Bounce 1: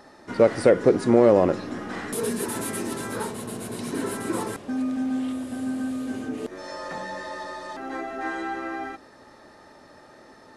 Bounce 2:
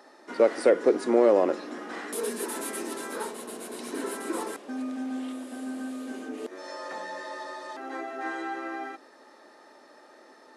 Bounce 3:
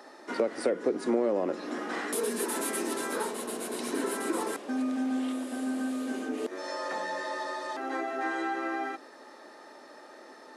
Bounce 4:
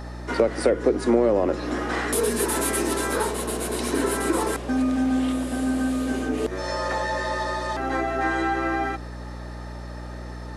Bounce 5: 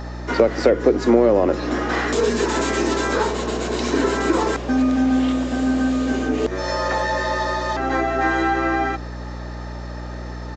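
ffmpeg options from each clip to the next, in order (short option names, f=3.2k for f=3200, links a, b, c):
-af "highpass=f=270:w=0.5412,highpass=f=270:w=1.3066,volume=-3dB"
-filter_complex "[0:a]acrossover=split=200[a][b];[b]acompressor=threshold=-31dB:ratio=4[c];[a][c]amix=inputs=2:normalize=0,volume=3.5dB"
-af "aeval=exprs='val(0)+0.00794*(sin(2*PI*60*n/s)+sin(2*PI*2*60*n/s)/2+sin(2*PI*3*60*n/s)/3+sin(2*PI*4*60*n/s)/4+sin(2*PI*5*60*n/s)/5)':c=same,volume=7.5dB"
-af "aresample=16000,aresample=44100,volume=4.5dB"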